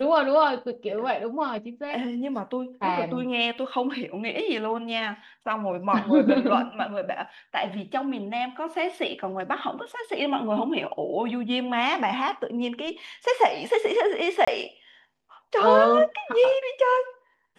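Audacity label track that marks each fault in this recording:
3.580000	3.580000	dropout 2.7 ms
14.450000	14.470000	dropout 25 ms

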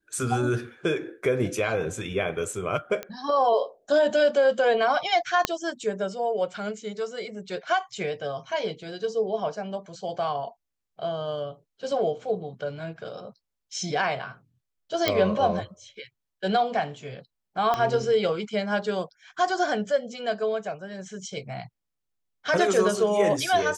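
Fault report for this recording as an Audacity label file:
3.030000	3.030000	pop -17 dBFS
5.450000	5.450000	pop -6 dBFS
15.080000	15.080000	pop -8 dBFS
17.740000	17.740000	pop -13 dBFS

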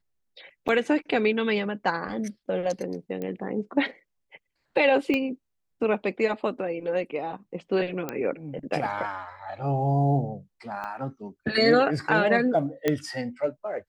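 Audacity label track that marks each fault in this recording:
0.680000	0.690000	dropout 7.7 ms
3.220000	3.220000	pop -21 dBFS
5.140000	5.140000	pop -15 dBFS
8.090000	8.090000	pop -15 dBFS
10.840000	10.840000	pop -23 dBFS
12.880000	12.880000	pop -10 dBFS

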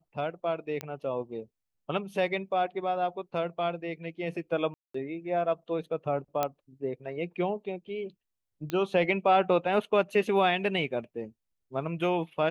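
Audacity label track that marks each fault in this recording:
0.810000	0.810000	pop -18 dBFS
4.740000	4.940000	dropout 204 ms
6.430000	6.430000	pop -13 dBFS
8.700000	8.700000	pop -18 dBFS

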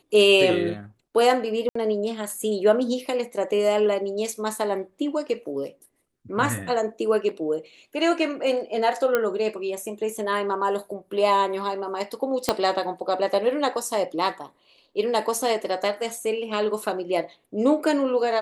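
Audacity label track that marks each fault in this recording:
1.690000	1.750000	dropout 64 ms
9.150000	9.150000	pop -8 dBFS
12.490000	12.490000	pop -5 dBFS

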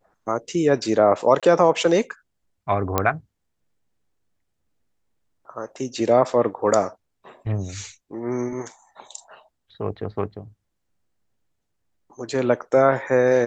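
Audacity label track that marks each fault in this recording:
1.400000	1.430000	dropout 26 ms
2.980000	2.980000	pop -5 dBFS

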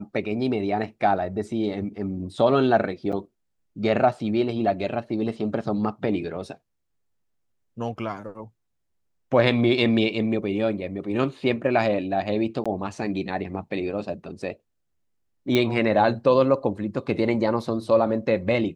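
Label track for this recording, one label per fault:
3.120000	3.130000	dropout 6.9 ms
12.640000	12.660000	dropout 16 ms
15.550000	15.550000	pop -9 dBFS

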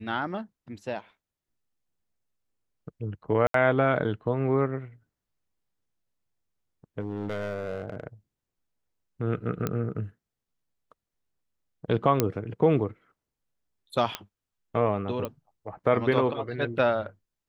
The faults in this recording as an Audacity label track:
3.470000	3.540000	dropout 73 ms
7.000000	8.030000	clipped -27 dBFS
9.670000	9.670000	pop -14 dBFS
12.200000	12.200000	pop -7 dBFS
14.150000	14.150000	pop -13 dBFS
15.250000	15.250000	pop -19 dBFS

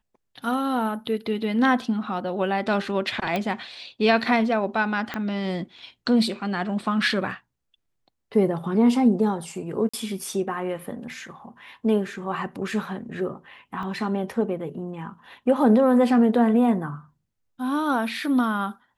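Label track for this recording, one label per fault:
3.360000	3.360000	pop -13 dBFS
5.140000	5.140000	pop -15 dBFS
9.890000	9.940000	dropout 45 ms
13.830000	13.830000	dropout 2.1 ms

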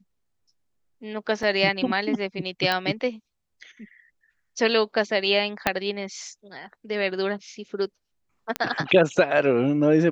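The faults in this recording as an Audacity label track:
1.430000	1.430000	dropout 2.1 ms
2.720000	2.720000	pop -11 dBFS
5.670000	5.670000	pop -5 dBFS
8.560000	8.560000	pop -10 dBFS

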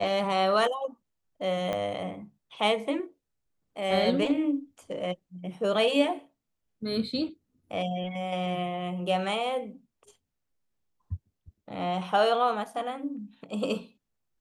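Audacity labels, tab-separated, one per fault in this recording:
1.730000	1.730000	pop -18 dBFS

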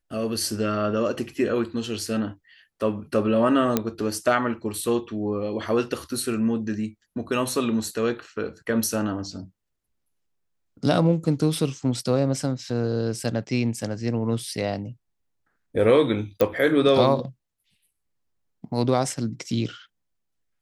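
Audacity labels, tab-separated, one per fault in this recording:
3.770000	3.770000	pop -6 dBFS
16.410000	16.410000	pop -9 dBFS

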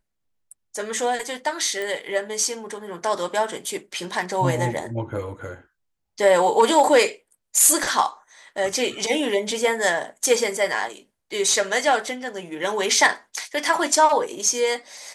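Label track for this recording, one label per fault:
1.820000	1.820000	pop -16 dBFS

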